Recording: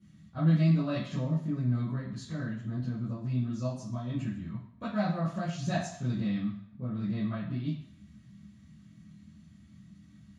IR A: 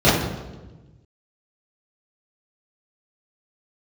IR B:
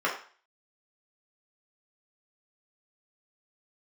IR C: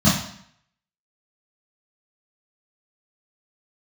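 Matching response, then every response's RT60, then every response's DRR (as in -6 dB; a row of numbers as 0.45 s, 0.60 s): C; 1.2 s, 0.40 s, 0.65 s; -13.0 dB, -5.0 dB, -11.5 dB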